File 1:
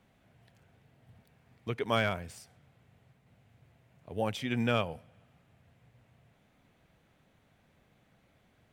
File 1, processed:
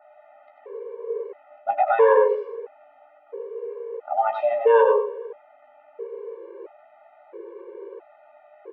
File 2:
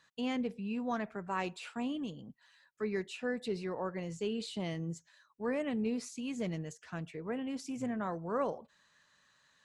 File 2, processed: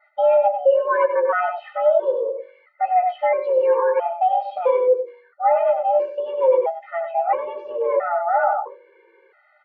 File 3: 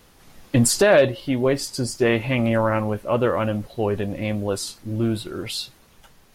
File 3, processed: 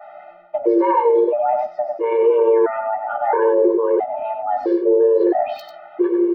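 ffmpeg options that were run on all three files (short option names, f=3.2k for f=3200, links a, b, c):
-filter_complex "[0:a]aemphasis=mode=reproduction:type=riaa,bandreject=f=48.42:t=h:w=4,bandreject=f=96.84:t=h:w=4,bandreject=f=145.26:t=h:w=4,bandreject=f=193.68:t=h:w=4,bandreject=f=242.1:t=h:w=4,adynamicequalizer=threshold=0.00355:dfrequency=2800:dqfactor=2.5:tfrequency=2800:tqfactor=2.5:attack=5:release=100:ratio=0.375:range=2.5:mode=cutabove:tftype=bell,areverse,acompressor=threshold=-25dB:ratio=6,areverse,afreqshift=340,acrossover=split=2300[a][b];[a]asplit=2[c][d];[d]adelay=15,volume=-5.5dB[e];[c][e]amix=inputs=2:normalize=0[f];[b]acrusher=bits=3:mix=0:aa=0.5[g];[f][g]amix=inputs=2:normalize=0,aecho=1:1:95:0.398,alimiter=level_in=23dB:limit=-1dB:release=50:level=0:latency=1,afftfilt=real='re*gt(sin(2*PI*0.75*pts/sr)*(1-2*mod(floor(b*sr/1024/300),2)),0)':imag='im*gt(sin(2*PI*0.75*pts/sr)*(1-2*mod(floor(b*sr/1024/300),2)),0)':win_size=1024:overlap=0.75,volume=-6dB"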